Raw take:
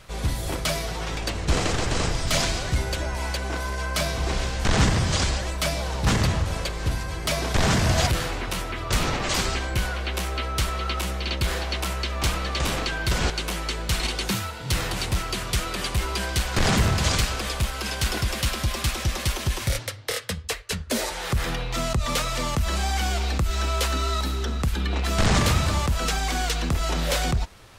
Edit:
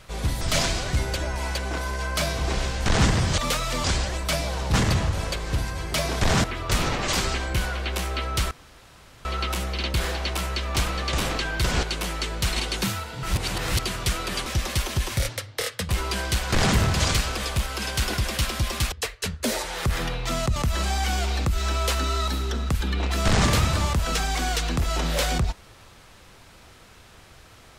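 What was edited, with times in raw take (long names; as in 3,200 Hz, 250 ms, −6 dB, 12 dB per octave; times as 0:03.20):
0:00.41–0:02.20: remove
0:07.77–0:08.65: remove
0:10.72: splice in room tone 0.74 s
0:14.70–0:15.26: reverse
0:18.96–0:20.39: move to 0:15.93
0:22.03–0:22.49: move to 0:05.17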